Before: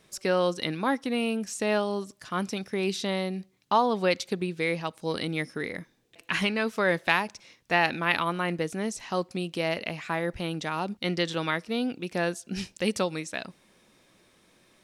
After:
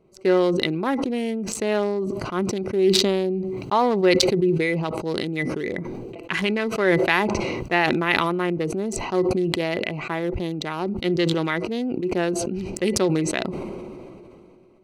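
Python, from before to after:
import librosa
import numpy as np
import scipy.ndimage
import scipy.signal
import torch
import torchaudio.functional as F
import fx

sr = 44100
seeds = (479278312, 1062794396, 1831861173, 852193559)

y = fx.wiener(x, sr, points=25)
y = fx.small_body(y, sr, hz=(370.0, 2000.0), ring_ms=70, db=11)
y = fx.sustainer(y, sr, db_per_s=22.0)
y = F.gain(torch.from_numpy(y), 2.0).numpy()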